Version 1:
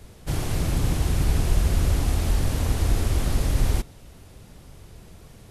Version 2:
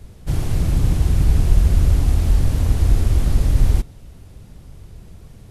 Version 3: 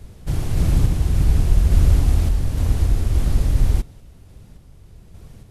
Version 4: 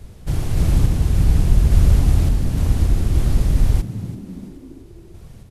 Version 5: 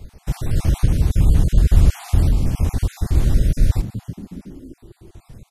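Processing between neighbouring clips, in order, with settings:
low-shelf EQ 240 Hz +9.5 dB; level −2 dB
sample-and-hold tremolo; level +1 dB
echo with shifted repeats 337 ms, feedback 48%, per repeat +77 Hz, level −15 dB; level +1 dB
time-frequency cells dropped at random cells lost 35%; level +1 dB

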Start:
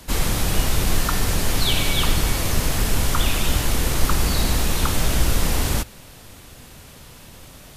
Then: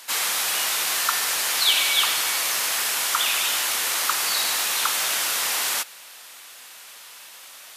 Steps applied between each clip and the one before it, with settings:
high-pass filter 1,100 Hz 12 dB per octave
level +4 dB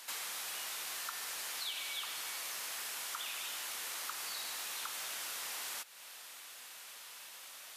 downward compressor 3 to 1, threshold −35 dBFS, peak gain reduction 15 dB
level −7.5 dB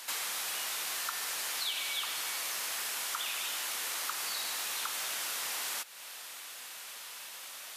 high-pass filter 94 Hz
level +5.5 dB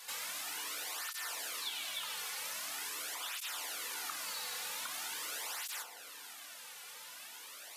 soft clipping −25.5 dBFS, distortion −24 dB
feedback delay network reverb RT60 2.2 s, low-frequency decay 1×, high-frequency decay 0.4×, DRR 3.5 dB
through-zero flanger with one copy inverted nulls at 0.44 Hz, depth 3.3 ms
level −2.5 dB

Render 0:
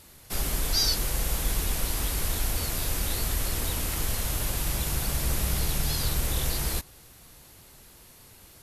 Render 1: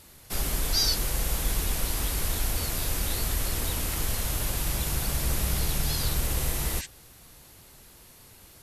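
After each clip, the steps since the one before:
healed spectral selection 0:06.31–0:06.83, 1,500–8,800 Hz before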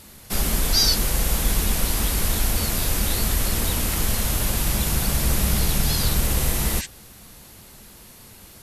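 parametric band 210 Hz +8.5 dB 0.25 octaves
level +6 dB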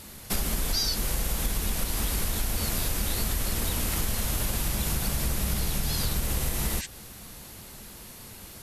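downward compressor, threshold −25 dBFS, peak gain reduction 10.5 dB
level +1 dB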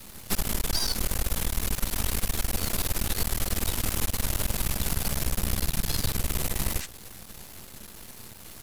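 half-wave rectification
level +3.5 dB

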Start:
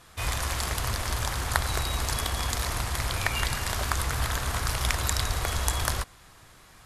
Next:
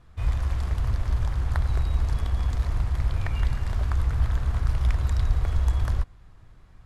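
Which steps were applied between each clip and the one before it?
RIAA equalisation playback
level −8.5 dB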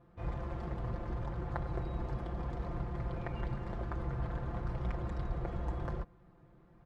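resonant band-pass 360 Hz, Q 0.76
comb filter 5.8 ms, depth 75%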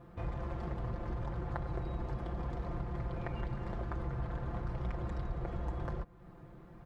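downward compressor 2 to 1, threshold −49 dBFS, peak gain reduction 10.5 dB
level +8 dB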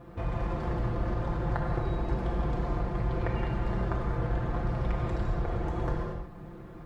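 reverb whose tail is shaped and stops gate 260 ms flat, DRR −0.5 dB
level +5.5 dB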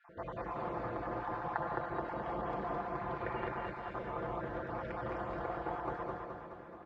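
time-frequency cells dropped at random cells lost 29%
resonant band-pass 990 Hz, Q 0.77
on a send: repeating echo 213 ms, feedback 55%, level −4 dB

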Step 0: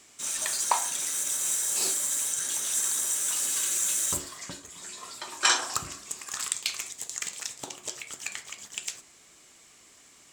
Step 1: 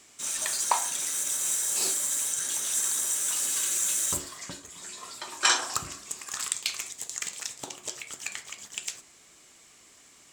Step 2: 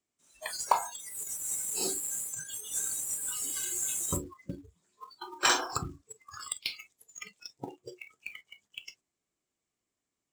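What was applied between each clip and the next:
no processing that can be heard
noise reduction from a noise print of the clip's start 30 dB; floating-point word with a short mantissa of 2 bits; tilt shelving filter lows +5.5 dB, about 780 Hz; level +1.5 dB

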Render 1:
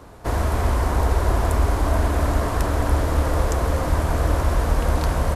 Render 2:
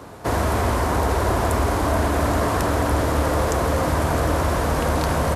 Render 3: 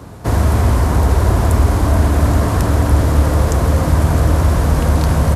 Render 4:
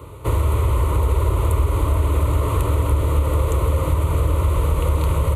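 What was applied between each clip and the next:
high-pass filter 95 Hz 12 dB per octave; in parallel at −1 dB: brickwall limiter −20 dBFS, peak gain reduction 9 dB
bass and treble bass +11 dB, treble +3 dB
downward compressor, threshold −12 dBFS, peak gain reduction 6 dB; phaser with its sweep stopped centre 1,100 Hz, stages 8

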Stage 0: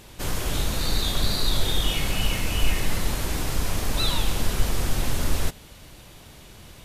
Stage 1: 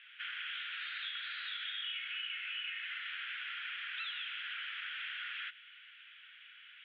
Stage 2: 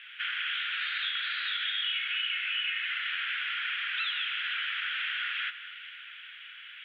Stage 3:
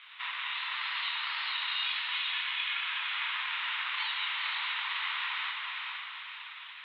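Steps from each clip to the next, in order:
Chebyshev band-pass filter 1,400–3,300 Hz, order 4; downward compressor, threshold −38 dBFS, peak gain reduction 9 dB
delay that swaps between a low-pass and a high-pass 232 ms, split 2,100 Hz, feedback 66%, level −12 dB; level +9 dB
multi-voice chorus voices 6, 0.46 Hz, delay 27 ms, depth 4.1 ms; ring modulation 440 Hz; feedback delay with all-pass diffusion 479 ms, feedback 45%, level −3 dB; level +2.5 dB

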